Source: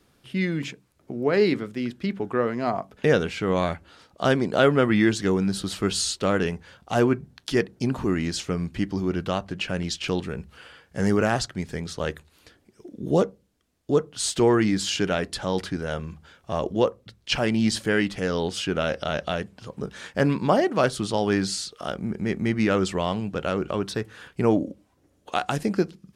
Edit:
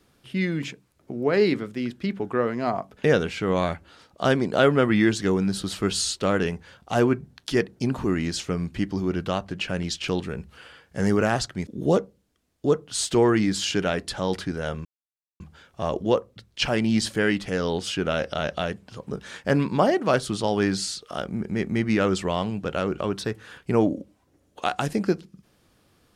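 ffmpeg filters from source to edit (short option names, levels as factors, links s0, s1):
-filter_complex "[0:a]asplit=3[s0][s1][s2];[s0]atrim=end=11.672[s3];[s1]atrim=start=12.918:end=16.1,asetpts=PTS-STARTPTS,afade=t=out:st=3.178:d=0.004:c=hsin,apad=pad_dur=0.55[s4];[s2]atrim=start=16.1,asetpts=PTS-STARTPTS,afade=t=in:d=0.004:c=hsin[s5];[s4][s5]concat=n=2:v=0:a=1[s6];[s3][s6]acrossfade=d=0.004:c1=hsin:c2=hsin"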